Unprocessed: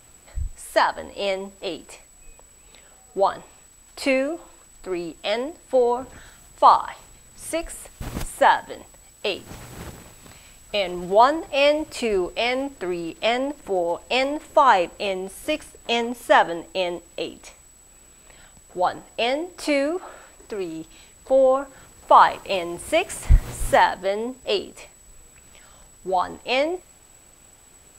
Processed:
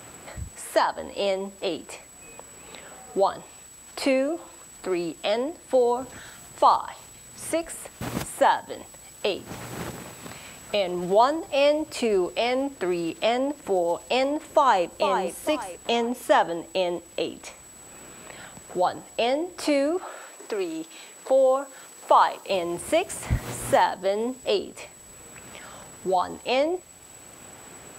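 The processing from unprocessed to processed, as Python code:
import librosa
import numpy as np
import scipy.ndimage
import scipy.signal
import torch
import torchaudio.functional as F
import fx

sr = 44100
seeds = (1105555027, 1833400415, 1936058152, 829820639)

y = fx.echo_throw(x, sr, start_s=14.45, length_s=0.53, ms=450, feedback_pct=30, wet_db=-8.5)
y = fx.highpass(y, sr, hz=310.0, slope=12, at=(20.03, 22.5))
y = scipy.signal.sosfilt(scipy.signal.butter(2, 77.0, 'highpass', fs=sr, output='sos'), y)
y = fx.dynamic_eq(y, sr, hz=2100.0, q=1.0, threshold_db=-35.0, ratio=4.0, max_db=-6)
y = fx.band_squash(y, sr, depth_pct=40)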